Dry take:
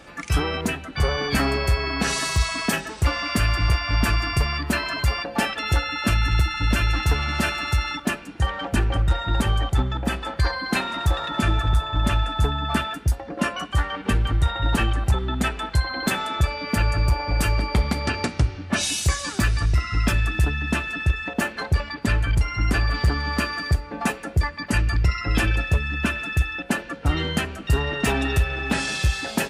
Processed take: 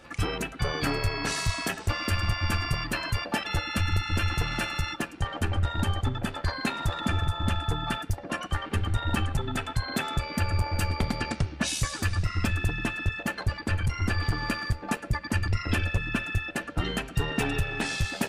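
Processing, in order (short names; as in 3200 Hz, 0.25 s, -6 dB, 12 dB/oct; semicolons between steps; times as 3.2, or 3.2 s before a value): granular stretch 0.62×, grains 26 ms; gain -4 dB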